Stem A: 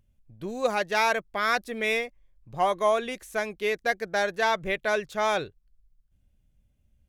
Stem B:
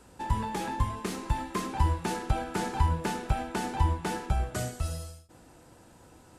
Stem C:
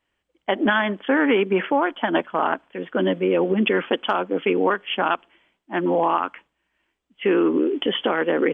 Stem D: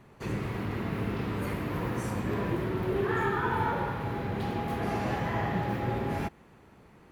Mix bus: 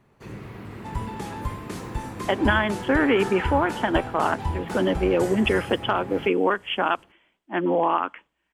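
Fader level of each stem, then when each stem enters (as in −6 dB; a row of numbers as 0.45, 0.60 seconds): muted, −2.5 dB, −1.5 dB, −5.5 dB; muted, 0.65 s, 1.80 s, 0.00 s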